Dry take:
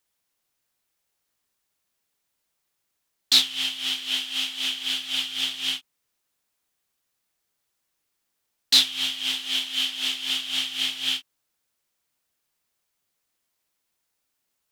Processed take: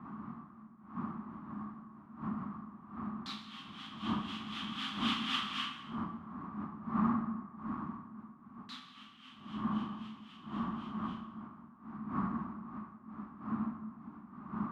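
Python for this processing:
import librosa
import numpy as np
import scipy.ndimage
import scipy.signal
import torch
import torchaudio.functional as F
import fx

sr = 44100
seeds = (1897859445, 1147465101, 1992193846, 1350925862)

y = fx.doppler_pass(x, sr, speed_mps=6, closest_m=1.7, pass_at_s=5.25)
y = fx.dmg_wind(y, sr, seeds[0], corner_hz=490.0, level_db=-46.0)
y = fx.double_bandpass(y, sr, hz=500.0, octaves=2.4)
y = fx.rev_plate(y, sr, seeds[1], rt60_s=1.4, hf_ratio=0.65, predelay_ms=0, drr_db=3.5)
y = y * 10.0 ** (14.5 / 20.0)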